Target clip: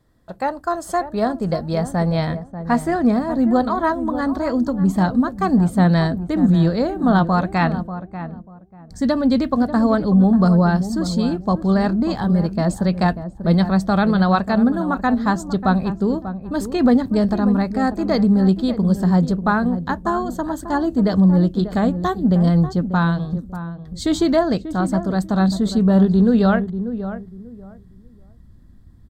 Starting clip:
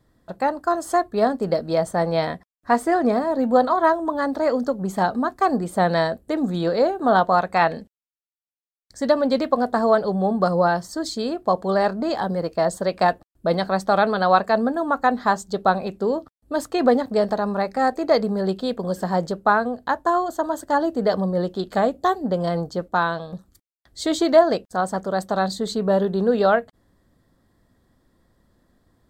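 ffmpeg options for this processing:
-filter_complex "[0:a]asubboost=boost=8.5:cutoff=180,asplit=2[s0][s1];[s1]adelay=590,lowpass=f=920:p=1,volume=0.316,asplit=2[s2][s3];[s3]adelay=590,lowpass=f=920:p=1,volume=0.24,asplit=2[s4][s5];[s5]adelay=590,lowpass=f=920:p=1,volume=0.24[s6];[s0][s2][s4][s6]amix=inputs=4:normalize=0"

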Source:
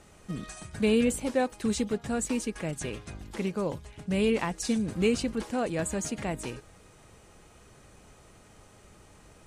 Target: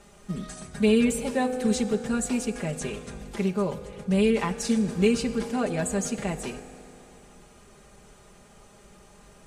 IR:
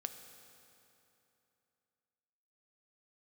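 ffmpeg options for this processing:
-filter_complex "[0:a]asplit=2[s0][s1];[1:a]atrim=start_sample=2205,adelay=5[s2];[s1][s2]afir=irnorm=-1:irlink=0,volume=1.06[s3];[s0][s3]amix=inputs=2:normalize=0"

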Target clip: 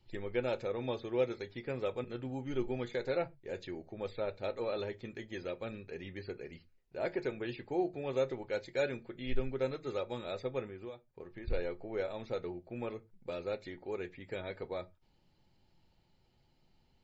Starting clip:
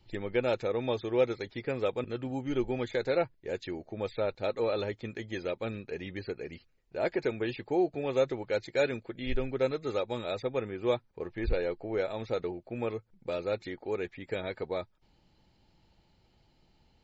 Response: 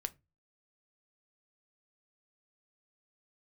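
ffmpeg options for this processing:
-filter_complex "[0:a]asettb=1/sr,asplit=3[s0][s1][s2];[s0]atrim=end=10.674[s3];[s1]atrim=start=10.67:end=11.48,asetpts=PTS-STARTPTS,afade=t=in:d=0.004:c=qsin,afade=t=out:st=0.806:d=0.004:c=qsin,acompressor=threshold=0.0126:ratio=8[s4];[s2]atrim=start=11.476[s5];[s3][s4]acrossfade=d=0.004:c1=hsin:c2=qsin[s6];[s6][s5]acrossfade=d=0.004:c1=qsin:c2=hsin[s7];[1:a]atrim=start_sample=2205,atrim=end_sample=6174[s8];[s7][s8]afir=irnorm=-1:irlink=0,volume=0.596"

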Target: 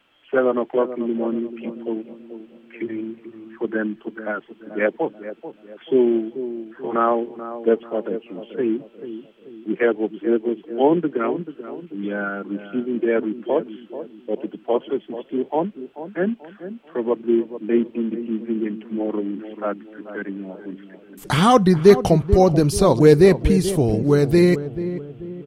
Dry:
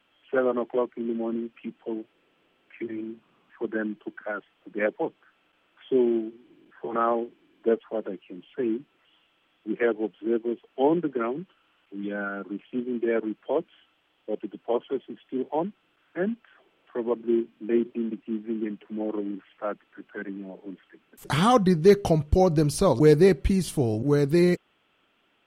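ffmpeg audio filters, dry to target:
-filter_complex "[0:a]asplit=2[s0][s1];[s1]adelay=436,lowpass=f=900:p=1,volume=0.282,asplit=2[s2][s3];[s3]adelay=436,lowpass=f=900:p=1,volume=0.45,asplit=2[s4][s5];[s5]adelay=436,lowpass=f=900:p=1,volume=0.45,asplit=2[s6][s7];[s7]adelay=436,lowpass=f=900:p=1,volume=0.45,asplit=2[s8][s9];[s9]adelay=436,lowpass=f=900:p=1,volume=0.45[s10];[s0][s2][s4][s6][s8][s10]amix=inputs=6:normalize=0,volume=1.88"

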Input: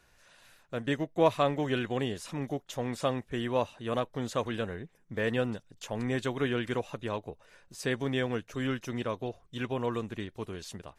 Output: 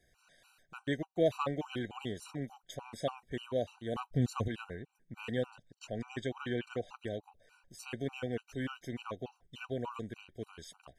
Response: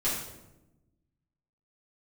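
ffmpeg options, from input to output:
-filter_complex "[0:a]asettb=1/sr,asplit=3[s0][s1][s2];[s0]atrim=end=3.964[s3];[s1]atrim=start=3.96:end=4.48,asetpts=PTS-STARTPTS,afade=t=in:d=0.004:c=qsin,afade=t=out:st=0.516:d=0.004:c=qsin,bass=f=250:g=14,treble=f=4000:g=3[s4];[s2]atrim=start=4.476[s5];[s3][s4]acrossfade=d=0.004:c1=hsin:c2=qsin[s6];[s6][s5]acrossfade=d=0.004:c1=qsin:c2=hsin,asettb=1/sr,asplit=3[s7][s8][s9];[s7]atrim=end=5.554[s10];[s8]atrim=start=5.55:end=6.97,asetpts=PTS-STARTPTS,afade=t=in:d=0.004:c=qsin,afade=t=out:st=1.416:d=0.004:c=qsin,lowpass=7700[s11];[s9]atrim=start=6.966[s12];[s10][s11]acrossfade=d=0.004:c1=hsin:c2=qsin[s13];[s13][s12]acrossfade=d=0.004:c1=qsin:c2=hsin,afftfilt=real='re*gt(sin(2*PI*3.4*pts/sr)*(1-2*mod(floor(b*sr/1024/770),2)),0)':imag='im*gt(sin(2*PI*3.4*pts/sr)*(1-2*mod(floor(b*sr/1024/770),2)),0)':win_size=1024:overlap=0.75,volume=0.668"

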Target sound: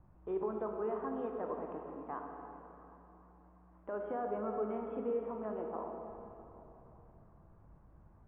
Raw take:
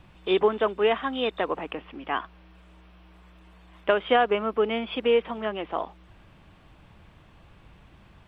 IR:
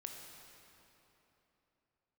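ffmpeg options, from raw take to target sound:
-filter_complex "[0:a]alimiter=limit=0.133:level=0:latency=1:release=32,lowpass=f=1200:w=0.5412,lowpass=f=1200:w=1.3066,equalizer=f=550:w=0.34:g=-3.5[s0];[1:a]atrim=start_sample=2205[s1];[s0][s1]afir=irnorm=-1:irlink=0,volume=0.708"

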